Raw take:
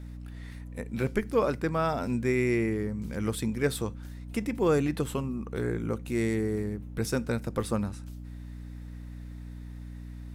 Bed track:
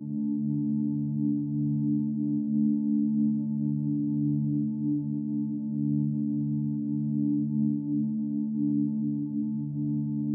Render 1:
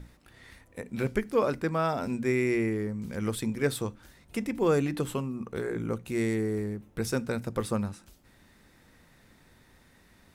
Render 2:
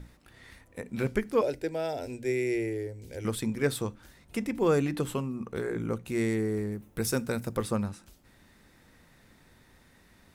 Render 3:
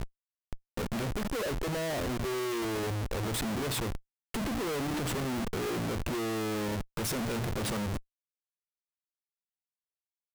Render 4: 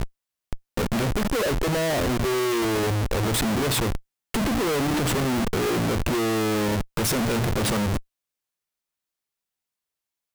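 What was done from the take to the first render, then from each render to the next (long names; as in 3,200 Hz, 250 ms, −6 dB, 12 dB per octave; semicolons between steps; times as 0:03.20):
mains-hum notches 60/120/180/240/300 Hz
0:01.41–0:03.25: phaser with its sweep stopped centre 480 Hz, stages 4; 0:06.72–0:07.57: high-shelf EQ 8,900 Hz +11.5 dB
comparator with hysteresis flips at −41.5 dBFS
level +9 dB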